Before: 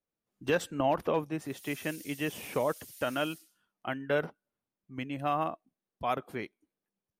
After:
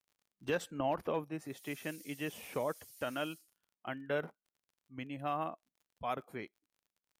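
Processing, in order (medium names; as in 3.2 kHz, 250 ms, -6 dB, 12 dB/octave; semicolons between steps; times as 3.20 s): crackle 40 per s -44 dBFS; spectral noise reduction 9 dB; trim -6 dB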